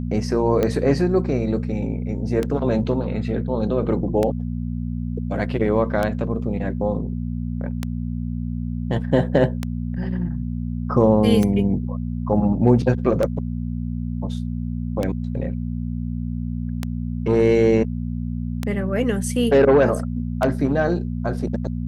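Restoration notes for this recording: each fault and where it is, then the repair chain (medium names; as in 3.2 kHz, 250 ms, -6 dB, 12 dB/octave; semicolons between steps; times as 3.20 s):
hum 60 Hz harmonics 4 -26 dBFS
tick 33 1/3 rpm -9 dBFS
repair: de-click; de-hum 60 Hz, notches 4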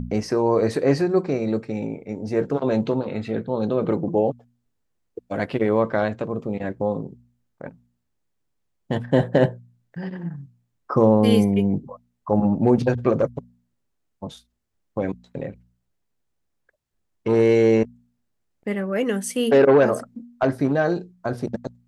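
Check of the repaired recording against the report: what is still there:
nothing left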